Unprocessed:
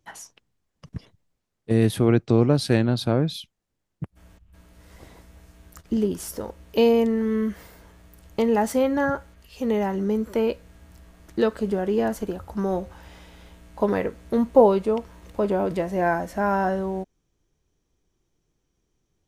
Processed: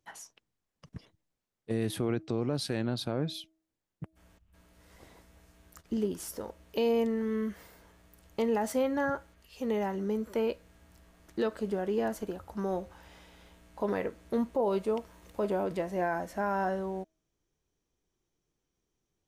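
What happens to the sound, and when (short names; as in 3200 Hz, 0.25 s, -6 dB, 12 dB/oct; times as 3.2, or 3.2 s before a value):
14.62–15.64 high shelf 7700 Hz +5.5 dB
whole clip: low shelf 180 Hz -6 dB; de-hum 320.1 Hz, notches 2; limiter -14.5 dBFS; gain -6 dB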